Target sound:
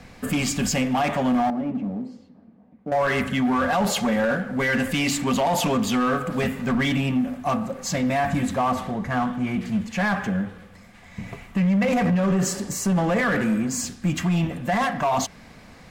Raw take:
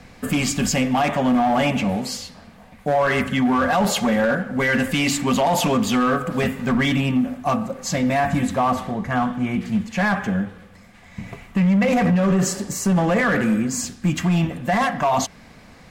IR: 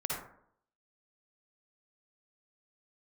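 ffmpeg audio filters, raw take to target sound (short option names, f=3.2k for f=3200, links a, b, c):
-filter_complex "[0:a]asettb=1/sr,asplit=3[a][b][c];[a]atrim=end=1.504[d];[b]atrim=start=1.5:end=2.92,asetpts=PTS-STARTPTS,afade=t=in:d=0.004:c=qsin,afade=t=out:st=1.416:d=0.004:c=qsin,bandpass=f=270:t=q:w=2.1:csg=0[e];[c]atrim=start=2.916[f];[d][e]acrossfade=d=0.004:c1=hsin:c2=qsin[g];[g][f]acrossfade=d=0.004:c1=qsin:c2=hsin,asplit=2[h][i];[i]asoftclip=type=hard:threshold=-28dB,volume=-6dB[j];[h][j]amix=inputs=2:normalize=0,volume=-4dB"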